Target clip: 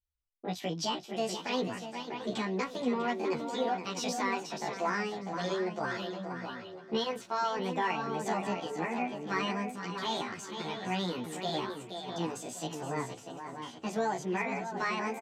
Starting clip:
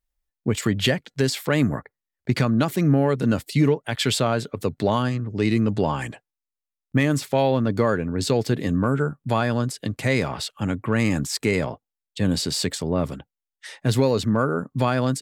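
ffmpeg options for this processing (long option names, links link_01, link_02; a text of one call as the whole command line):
ffmpeg -i in.wav -filter_complex "[0:a]asplit=2[link_01][link_02];[link_02]adelay=27,volume=-12dB[link_03];[link_01][link_03]amix=inputs=2:normalize=0,asplit=2[link_04][link_05];[link_05]aecho=0:1:474|948|1422:0.376|0.0752|0.015[link_06];[link_04][link_06]amix=inputs=2:normalize=0,asetrate=74167,aresample=44100,atempo=0.594604,lowpass=5500,equalizer=frequency=290:width_type=o:width=3:gain=-5.5,asplit=2[link_07][link_08];[link_08]adelay=645,lowpass=frequency=2500:poles=1,volume=-7dB,asplit=2[link_09][link_10];[link_10]adelay=645,lowpass=frequency=2500:poles=1,volume=0.23,asplit=2[link_11][link_12];[link_12]adelay=645,lowpass=frequency=2500:poles=1,volume=0.23[link_13];[link_09][link_11][link_13]amix=inputs=3:normalize=0[link_14];[link_07][link_14]amix=inputs=2:normalize=0,asplit=2[link_15][link_16];[link_16]adelay=11.1,afreqshift=-0.85[link_17];[link_15][link_17]amix=inputs=2:normalize=1,volume=-6dB" out.wav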